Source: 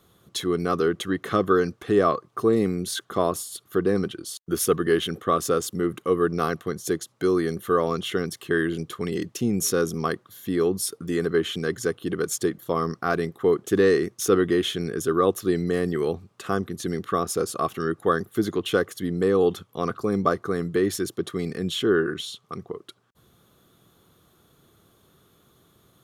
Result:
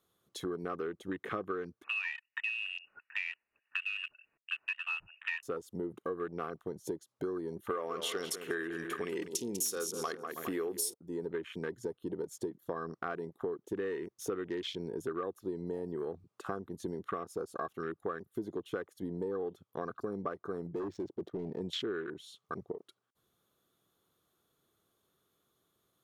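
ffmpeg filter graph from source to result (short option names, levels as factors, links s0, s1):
-filter_complex "[0:a]asettb=1/sr,asplit=3[s0][s1][s2];[s0]atrim=end=1.844[s3];[s1]atrim=start=1.84:end=5.43,asetpts=PTS-STARTPTS,afade=t=in:d=0.004:c=qsin,afade=t=out:st=3.586:d=0.004:c=qsin,highpass=f=300:p=1,lowpass=f=2600:t=q:w=0.5098,lowpass=f=2600:t=q:w=0.6013,lowpass=f=2600:t=q:w=0.9,lowpass=f=2600:t=q:w=2.563,afreqshift=-3000[s4];[s2]atrim=start=5.426[s5];[s3][s4]acrossfade=d=0.004:c1=hsin:c2=qsin[s6];[s6][s5]acrossfade=d=0.004:c1=qsin:c2=hsin,asettb=1/sr,asplit=3[s7][s8][s9];[s7]atrim=end=7.704[s10];[s8]atrim=start=7.7:end=10.94,asetpts=PTS-STARTPTS,afade=t=in:d=0.004:c=qsin,afade=t=out:st=3.236:d=0.004:c=qsin,bass=f=250:g=-10,treble=f=4000:g=8,aeval=exprs='0.562*sin(PI/2*1.58*val(0)/0.562)':c=same,aecho=1:1:49|194|322|410:0.119|0.282|0.112|0.112,atrim=end_sample=142884[s11];[s9]atrim=start=10.936[s12];[s10][s11]acrossfade=d=0.004:c1=hsin:c2=qsin[s13];[s13][s12]acrossfade=d=0.004:c1=qsin:c2=hsin,asettb=1/sr,asplit=3[s14][s15][s16];[s14]atrim=end=20.674[s17];[s15]atrim=start=20.67:end=21.61,asetpts=PTS-STARTPTS,afade=t=in:d=0.004:c=qsin,afade=t=out:st=0.936:d=0.004:c=qsin,lowpass=f=6200:t=q:w=1.6,adynamicsmooth=sensitivity=3.5:basefreq=1100,asoftclip=type=hard:threshold=0.0596[s18];[s16]atrim=start=21.606[s19];[s17][s18]acrossfade=d=0.004:c1=hsin:c2=qsin[s20];[s20][s19]acrossfade=d=0.004:c1=qsin:c2=hsin,afwtdn=0.0251,bass=f=250:g=-7,treble=f=4000:g=2,acompressor=threshold=0.0178:ratio=6"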